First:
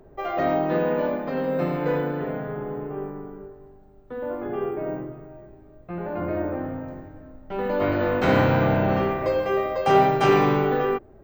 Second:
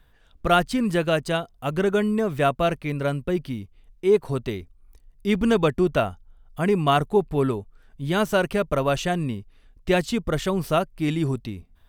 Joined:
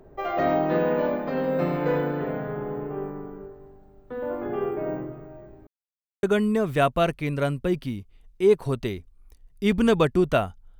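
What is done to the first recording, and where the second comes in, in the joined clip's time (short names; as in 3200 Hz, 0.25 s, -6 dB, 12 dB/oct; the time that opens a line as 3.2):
first
5.67–6.23 mute
6.23 switch to second from 1.86 s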